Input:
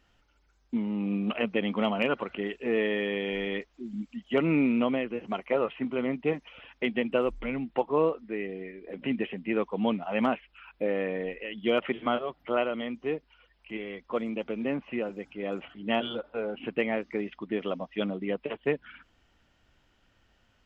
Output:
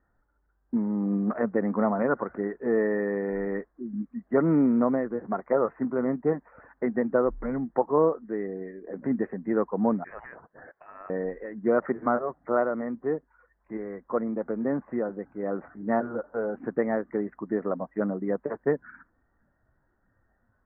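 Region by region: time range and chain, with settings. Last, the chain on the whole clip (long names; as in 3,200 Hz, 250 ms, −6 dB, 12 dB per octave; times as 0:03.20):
0:10.04–0:11.10: downward compressor, threshold −31 dBFS + voice inversion scrambler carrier 3,100 Hz
whole clip: noise reduction from a noise print of the clip's start 7 dB; Butterworth low-pass 1,800 Hz 72 dB per octave; level +3 dB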